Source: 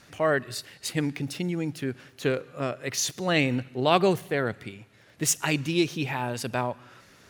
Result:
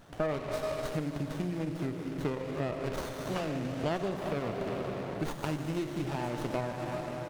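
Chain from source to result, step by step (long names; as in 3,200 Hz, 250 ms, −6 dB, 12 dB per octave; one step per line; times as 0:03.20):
0:02.96–0:03.84: all-pass dispersion lows, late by 106 ms, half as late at 1,900 Hz
convolution reverb RT60 4.0 s, pre-delay 21 ms, DRR 4 dB
downward compressor 10 to 1, threshold −30 dBFS, peak gain reduction 16 dB
parametric band 650 Hz +4.5 dB 0.26 octaves
single-tap delay 973 ms −22 dB
windowed peak hold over 17 samples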